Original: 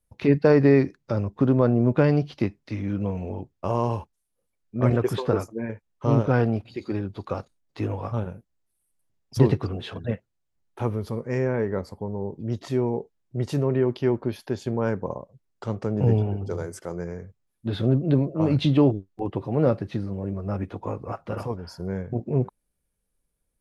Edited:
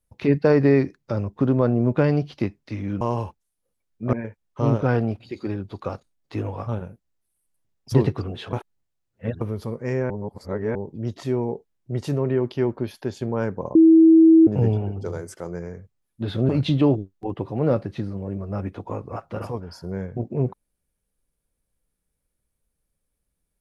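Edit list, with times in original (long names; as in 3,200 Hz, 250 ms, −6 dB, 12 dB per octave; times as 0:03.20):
0:03.01–0:03.74: remove
0:04.86–0:05.58: remove
0:09.98–0:10.86: reverse
0:11.55–0:12.20: reverse
0:15.20–0:15.92: beep over 324 Hz −8.5 dBFS
0:17.94–0:18.45: remove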